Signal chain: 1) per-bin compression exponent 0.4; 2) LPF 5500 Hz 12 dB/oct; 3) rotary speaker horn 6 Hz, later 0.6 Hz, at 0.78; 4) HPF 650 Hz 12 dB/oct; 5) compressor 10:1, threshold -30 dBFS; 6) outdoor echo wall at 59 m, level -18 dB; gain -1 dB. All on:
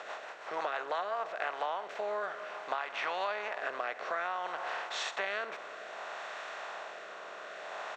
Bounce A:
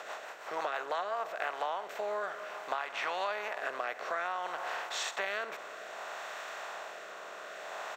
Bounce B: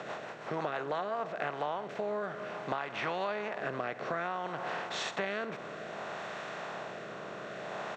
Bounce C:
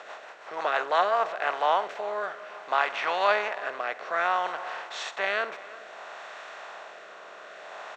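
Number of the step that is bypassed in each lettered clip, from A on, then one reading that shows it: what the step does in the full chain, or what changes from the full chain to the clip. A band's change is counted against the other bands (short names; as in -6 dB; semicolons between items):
2, 8 kHz band +5.0 dB; 4, 250 Hz band +13.5 dB; 5, mean gain reduction 3.5 dB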